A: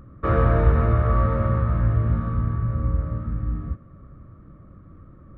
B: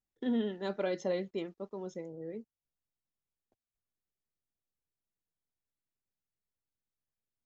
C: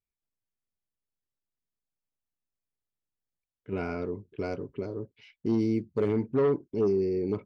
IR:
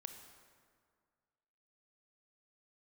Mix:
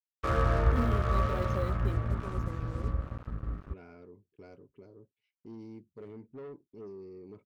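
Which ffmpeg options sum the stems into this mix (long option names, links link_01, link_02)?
-filter_complex "[0:a]equalizer=frequency=180:width=0.36:gain=-6.5,aeval=exprs='sgn(val(0))*max(abs(val(0))-0.0178,0)':channel_layout=same,volume=-3dB[link_01];[1:a]lowshelf=frequency=470:gain=6,acrusher=bits=7:mix=0:aa=0.5,adelay=500,volume=-7.5dB[link_02];[2:a]agate=range=-13dB:threshold=-52dB:ratio=16:detection=peak,asoftclip=type=tanh:threshold=-20dB,volume=-18dB[link_03];[link_01][link_02][link_03]amix=inputs=3:normalize=0"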